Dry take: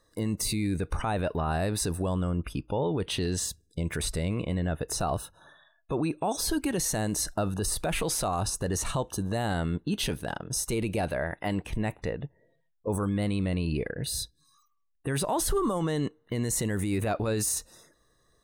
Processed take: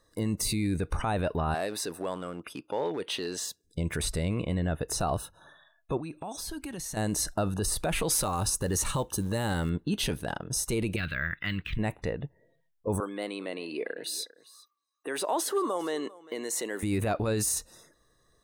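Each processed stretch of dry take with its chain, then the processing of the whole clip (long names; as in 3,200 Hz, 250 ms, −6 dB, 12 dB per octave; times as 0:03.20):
0:01.54–0:03.64: dynamic equaliser 9,300 Hz, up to −6 dB, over −47 dBFS, Q 1.2 + hard clipping −21.5 dBFS + high-pass filter 350 Hz
0:05.97–0:06.97: parametric band 440 Hz −5.5 dB 0.76 octaves + downward compressor 2.5 to 1, threshold −38 dBFS
0:08.10–0:09.70: high-shelf EQ 8,900 Hz +7.5 dB + floating-point word with a short mantissa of 4 bits + Butterworth band-reject 690 Hz, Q 6.5
0:10.96–0:11.79: drawn EQ curve 150 Hz 0 dB, 820 Hz −21 dB, 1,300 Hz +5 dB, 3,800 Hz +7 dB, 6,400 Hz −12 dB + linearly interpolated sample-rate reduction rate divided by 2×
0:13.00–0:16.83: high-pass filter 320 Hz 24 dB per octave + parametric band 11,000 Hz −4 dB 1 octave + single-tap delay 399 ms −20 dB
whole clip: no processing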